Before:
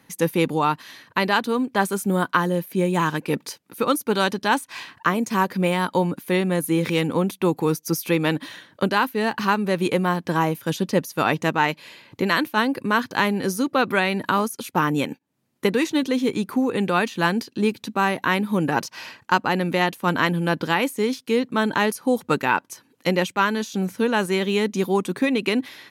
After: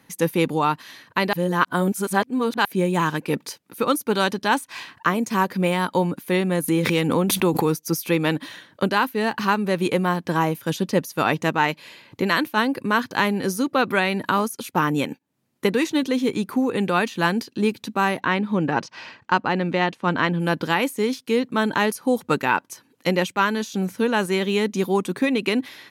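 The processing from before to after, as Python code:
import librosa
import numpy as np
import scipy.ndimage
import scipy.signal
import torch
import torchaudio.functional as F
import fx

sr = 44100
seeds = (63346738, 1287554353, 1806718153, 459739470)

y = fx.pre_swell(x, sr, db_per_s=29.0, at=(6.68, 7.66))
y = fx.air_absorb(y, sr, metres=110.0, at=(18.2, 20.4))
y = fx.edit(y, sr, fx.reverse_span(start_s=1.33, length_s=1.32), tone=tone)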